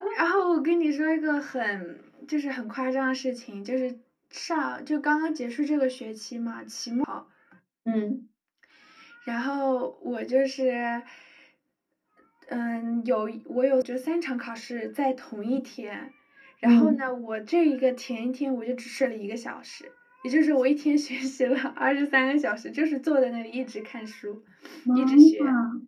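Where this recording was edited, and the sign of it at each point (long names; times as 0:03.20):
0:07.04: cut off before it has died away
0:13.82: cut off before it has died away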